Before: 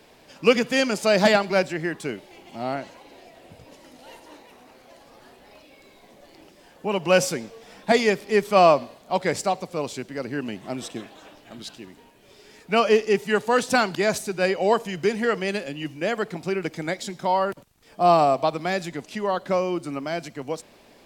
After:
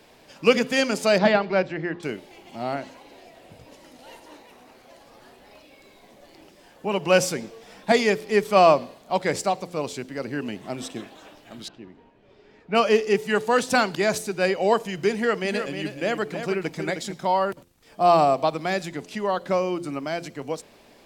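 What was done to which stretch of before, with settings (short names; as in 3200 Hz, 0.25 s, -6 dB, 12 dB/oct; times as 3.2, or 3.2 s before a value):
1.18–2.03 air absorption 220 m
11.68–12.75 tape spacing loss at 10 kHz 31 dB
15.13–17.14 echo 0.312 s -8 dB
whole clip: de-hum 86.79 Hz, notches 6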